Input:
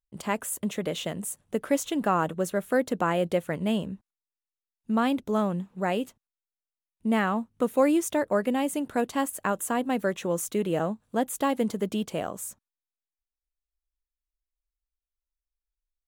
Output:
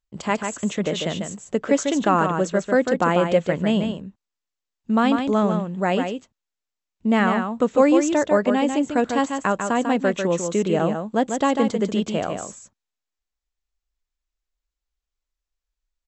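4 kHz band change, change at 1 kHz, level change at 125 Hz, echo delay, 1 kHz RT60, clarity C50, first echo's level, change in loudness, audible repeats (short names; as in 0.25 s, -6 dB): +6.5 dB, +6.5 dB, +6.5 dB, 0.146 s, none, none, -6.0 dB, +6.5 dB, 1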